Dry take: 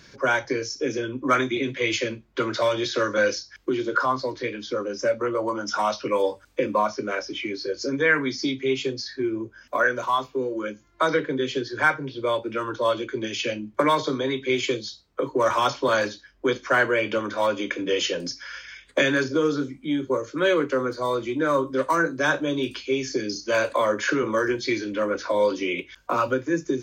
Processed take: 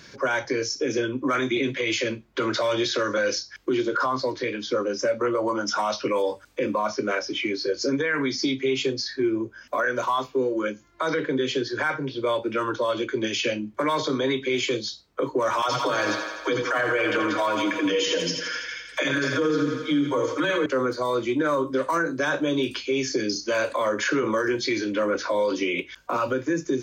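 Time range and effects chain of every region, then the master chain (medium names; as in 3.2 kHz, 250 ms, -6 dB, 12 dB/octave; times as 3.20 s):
15.62–20.66 s: comb 6.4 ms, depth 69% + phase dispersion lows, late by 70 ms, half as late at 310 Hz + thinning echo 83 ms, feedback 71%, high-pass 280 Hz, level -9.5 dB
whole clip: bass shelf 78 Hz -8 dB; peak limiter -19 dBFS; trim +3.5 dB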